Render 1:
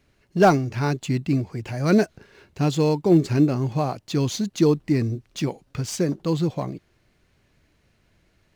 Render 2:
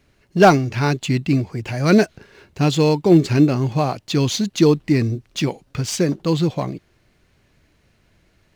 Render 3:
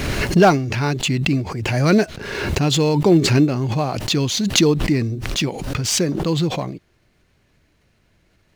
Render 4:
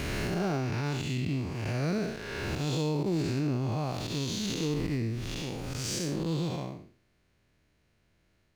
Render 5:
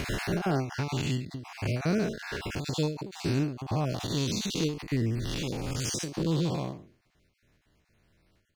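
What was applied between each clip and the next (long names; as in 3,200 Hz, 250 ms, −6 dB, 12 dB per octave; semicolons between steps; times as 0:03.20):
dynamic equaliser 3,000 Hz, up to +5 dB, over −45 dBFS, Q 0.84; level +4 dB
background raised ahead of every attack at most 36 dB per second; level −2 dB
spectrum smeared in time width 212 ms; brickwall limiter −14 dBFS, peak gain reduction 7 dB; level −8 dB
time-frequency cells dropped at random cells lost 26%; every ending faded ahead of time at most 120 dB per second; level +3.5 dB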